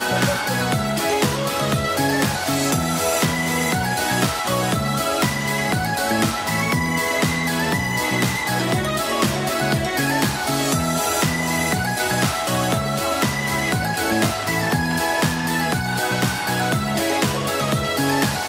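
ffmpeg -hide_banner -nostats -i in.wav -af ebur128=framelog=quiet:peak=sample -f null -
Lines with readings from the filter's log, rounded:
Integrated loudness:
  I:         -20.2 LUFS
  Threshold: -30.2 LUFS
Loudness range:
  LRA:         0.5 LU
  Threshold: -40.2 LUFS
  LRA low:   -20.4 LUFS
  LRA high:  -19.9 LUFS
Sample peak:
  Peak:       -5.2 dBFS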